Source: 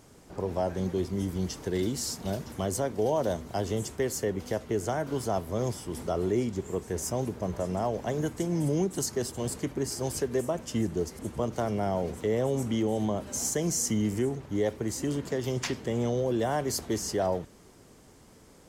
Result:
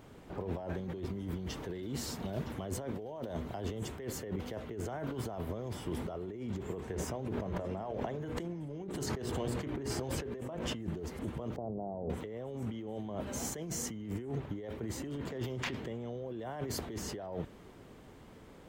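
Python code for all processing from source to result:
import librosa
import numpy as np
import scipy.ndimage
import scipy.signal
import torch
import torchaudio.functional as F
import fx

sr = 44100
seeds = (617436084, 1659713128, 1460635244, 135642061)

y = fx.chain(x, sr, fx.high_shelf(hz=8300.0, db=-7.5),
    fx.hum_notches(base_hz=60, count=10),
    fx.sustainer(db_per_s=38.0), at=(6.8, 10.76))
y = fx.chain(y, sr, fx.steep_lowpass(hz=850.0, slope=36),
    fx.hum_notches(base_hz=50, count=3), at=(11.56, 12.1))
y = fx.band_shelf(y, sr, hz=7700.0, db=-12.0, octaves=1.7)
y = fx.over_compress(y, sr, threshold_db=-35.0, ratio=-1.0)
y = y * librosa.db_to_amplitude(-3.5)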